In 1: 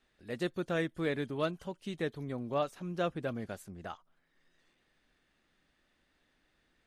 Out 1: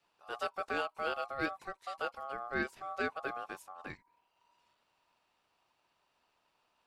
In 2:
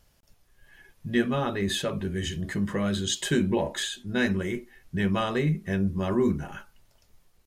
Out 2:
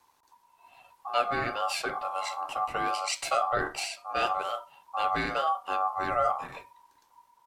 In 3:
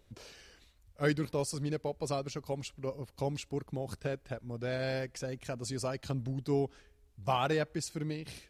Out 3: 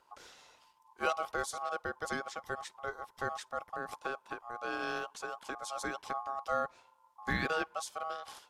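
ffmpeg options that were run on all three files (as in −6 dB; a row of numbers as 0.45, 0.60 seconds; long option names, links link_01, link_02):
-af "afreqshift=13,aeval=exprs='val(0)*sin(2*PI*960*n/s)':channel_layout=same"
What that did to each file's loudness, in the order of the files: −2.0, −2.0, −2.0 LU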